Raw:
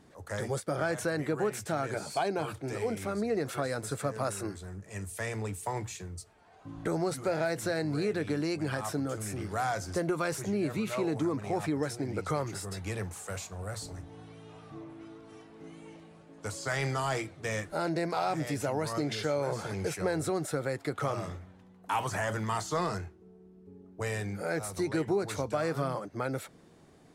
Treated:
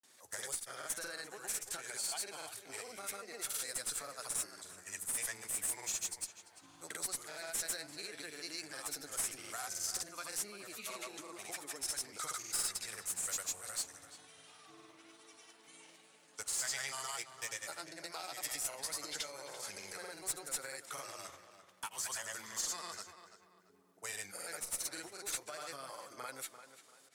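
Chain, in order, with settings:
downward compressor, threshold −33 dBFS, peak gain reduction 8.5 dB
first difference
asymmetric clip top −43 dBFS
granular cloud, spray 100 ms, pitch spread up and down by 0 semitones
tape delay 341 ms, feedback 35%, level −10 dB, low-pass 3,000 Hz
level +10.5 dB

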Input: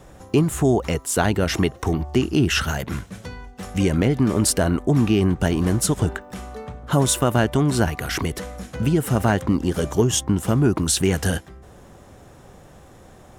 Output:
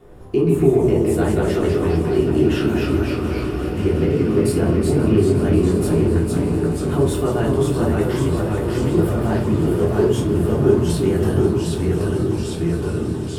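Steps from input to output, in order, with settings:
delay with pitch and tempo change per echo 111 ms, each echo −1 semitone, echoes 3
in parallel at +1 dB: downward compressor, threshold −21 dBFS, peak gain reduction 10 dB
on the sum: graphic EQ with 15 bands 100 Hz +5 dB, 400 Hz +11 dB, 6,300 Hz −10 dB
on a send: echo that builds up and dies away 179 ms, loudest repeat 5, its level −16 dB
on the sum: rectangular room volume 280 cubic metres, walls furnished, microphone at 3.3 metres
level −16.5 dB

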